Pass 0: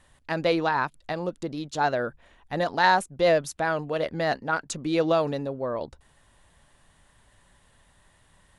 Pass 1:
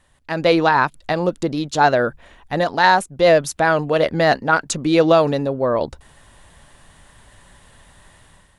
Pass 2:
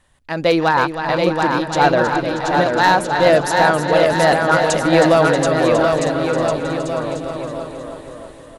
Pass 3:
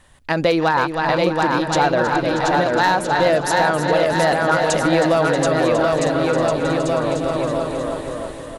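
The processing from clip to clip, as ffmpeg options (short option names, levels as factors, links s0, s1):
-af "dynaudnorm=f=110:g=7:m=3.76"
-filter_complex "[0:a]asplit=2[s0][s1];[s1]aecho=0:1:317|634|951|1268|1585|1902|2219:0.355|0.206|0.119|0.0692|0.0402|0.0233|0.0135[s2];[s0][s2]amix=inputs=2:normalize=0,asoftclip=type=hard:threshold=0.473,asplit=2[s3][s4];[s4]aecho=0:1:730|1314|1781|2155|2454:0.631|0.398|0.251|0.158|0.1[s5];[s3][s5]amix=inputs=2:normalize=0"
-af "acompressor=threshold=0.0631:ratio=3,volume=2.24"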